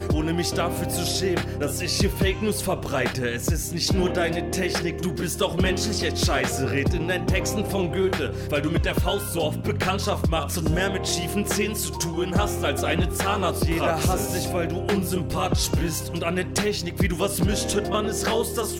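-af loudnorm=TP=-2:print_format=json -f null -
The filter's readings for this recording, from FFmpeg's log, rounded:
"input_i" : "-24.4",
"input_tp" : "-11.9",
"input_lra" : "0.7",
"input_thresh" : "-34.4",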